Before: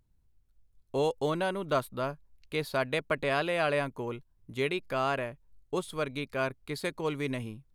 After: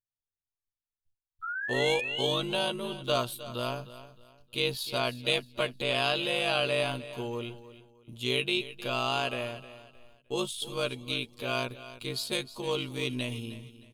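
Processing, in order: gate -55 dBFS, range -32 dB; resonant high shelf 2400 Hz +6.5 dB, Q 3; painted sound rise, 0.79–1.34, 1300–3800 Hz -33 dBFS; granular stretch 1.8×, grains 38 ms; on a send: feedback echo 0.31 s, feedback 31%, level -15 dB

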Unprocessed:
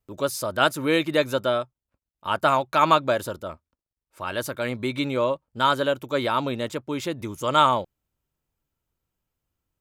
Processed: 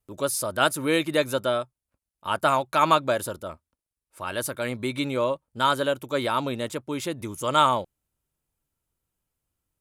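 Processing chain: bell 10000 Hz +9.5 dB 0.67 oct; gain -1.5 dB

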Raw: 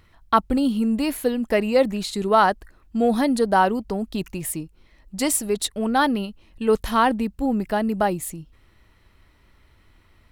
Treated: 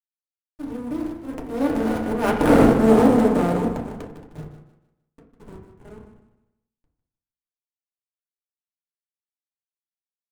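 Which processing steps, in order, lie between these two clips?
per-bin compression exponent 0.2; Doppler pass-by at 2.58, 28 m/s, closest 4.5 m; notches 50/100/150/200/250/300 Hz; spectral noise reduction 15 dB; graphic EQ 125/250/1000/2000/4000/8000 Hz +11/+3/-7/-5/-8/-3 dB; in parallel at +1 dB: compressor 8:1, threshold -33 dBFS, peak gain reduction 19.5 dB; on the sum: auto swell 0.16 s; backlash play -23 dBFS; on a send: feedback echo 0.153 s, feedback 33%, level -11 dB; on the sum: FDN reverb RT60 0.61 s, low-frequency decay 1.2×, high-frequency decay 0.25×, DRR -3 dB; running maximum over 9 samples; gain -1.5 dB

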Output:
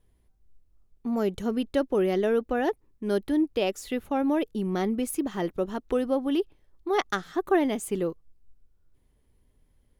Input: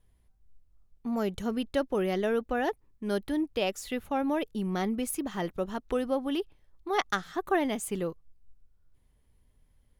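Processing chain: bell 350 Hz +6 dB 1.2 oct

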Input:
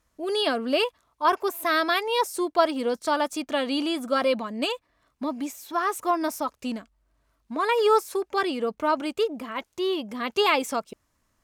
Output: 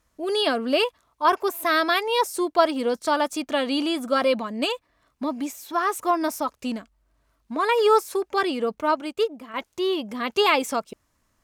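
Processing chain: 8.81–9.54 upward expander 1.5:1, over -38 dBFS; gain +2 dB

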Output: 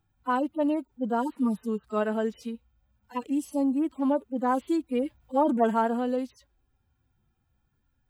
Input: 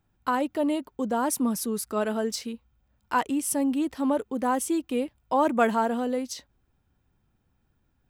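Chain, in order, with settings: median-filter separation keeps harmonic; 3.14–3.87 bell 710 Hz -> 4500 Hz -13 dB 0.6 oct; 5–5.57 transient shaper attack +1 dB, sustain +6 dB

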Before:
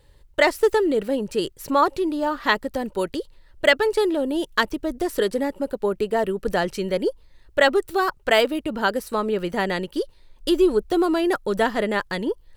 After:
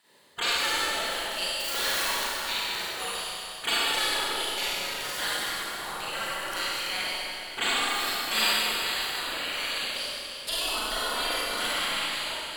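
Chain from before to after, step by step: 1.6–2.12 zero-crossing step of -26 dBFS; spectral gate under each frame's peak -20 dB weak; low shelf 180 Hz -10 dB; Schroeder reverb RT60 2.9 s, combs from 32 ms, DRR -9 dB

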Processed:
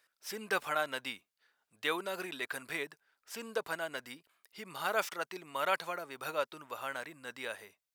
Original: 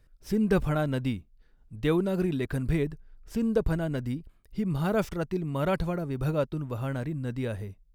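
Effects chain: HPF 1000 Hz 12 dB/oct; gain +3.5 dB

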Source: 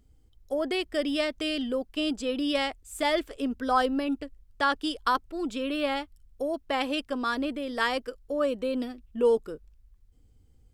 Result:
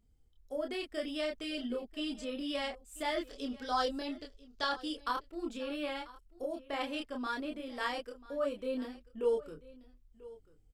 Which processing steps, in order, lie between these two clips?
3.28–4.69 band shelf 4800 Hz +11 dB 1.2 oct; chorus voices 6, 0.19 Hz, delay 28 ms, depth 5 ms; echo 0.99 s -19.5 dB; gain -5.5 dB

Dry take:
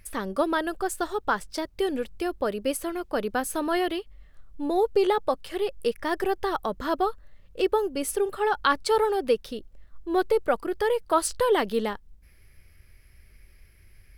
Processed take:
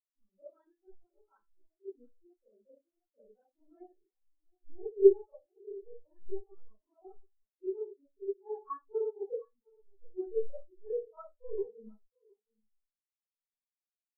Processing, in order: echo 0.714 s -7.5 dB; Schroeder reverb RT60 0.64 s, combs from 29 ms, DRR -7 dB; spectral expander 4:1; gain -6.5 dB

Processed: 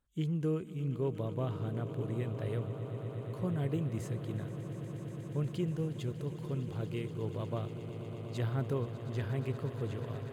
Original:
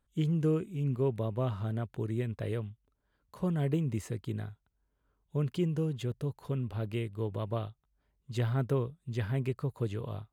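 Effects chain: swelling echo 0.12 s, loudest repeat 8, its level -15.5 dB; gain -4 dB

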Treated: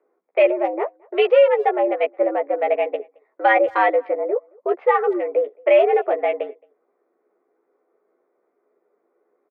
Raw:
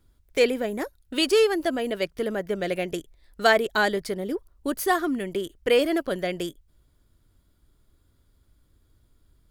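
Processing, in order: Wiener smoothing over 15 samples; bell 1500 Hz -12 dB 0.26 oct; doubler 13 ms -4 dB; mistuned SSB +110 Hz 250–2400 Hz; speakerphone echo 0.22 s, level -28 dB; maximiser +12 dB; gain -5 dB

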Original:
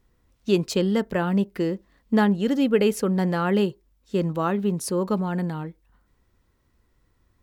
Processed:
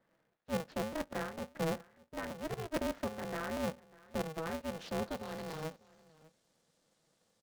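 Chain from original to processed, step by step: CVSD 64 kbps; reverse; compressor 10:1, threshold -31 dBFS, peak gain reduction 17 dB; reverse; elliptic high-pass 310 Hz, stop band 40 dB; band shelf 1200 Hz -13.5 dB 2.4 oct; low-pass sweep 1700 Hz -> 9300 Hz, 4.21–6.21; fifteen-band EQ 630 Hz +9 dB, 1600 Hz +7 dB, 10000 Hz -11 dB; echo 0.596 s -21.5 dB; crackling interface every 0.23 s, samples 256, repeat, from 0.92; polarity switched at an audio rate 160 Hz

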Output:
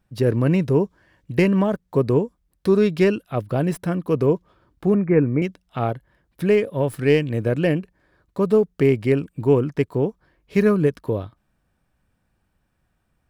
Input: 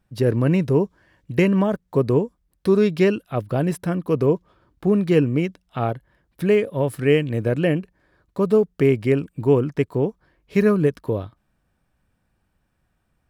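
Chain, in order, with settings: tracing distortion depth 0.03 ms; 4.94–5.42 steep low-pass 2400 Hz 96 dB/oct

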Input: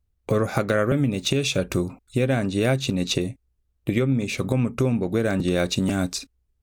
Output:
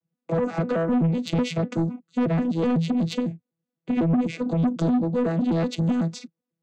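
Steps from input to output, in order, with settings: arpeggiated vocoder bare fifth, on E3, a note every 0.125 s; 4.57–5.02 resonant high shelf 3000 Hz +8 dB, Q 3; soft clip -22 dBFS, distortion -11 dB; gain +4.5 dB

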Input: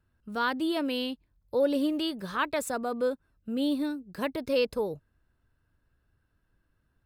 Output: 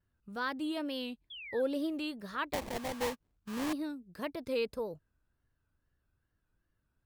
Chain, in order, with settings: wow and flutter 110 cents; 1.3–1.62 painted sound fall 1500–3500 Hz -39 dBFS; 2.53–3.73 sample-rate reducer 1400 Hz, jitter 20%; gain -7 dB

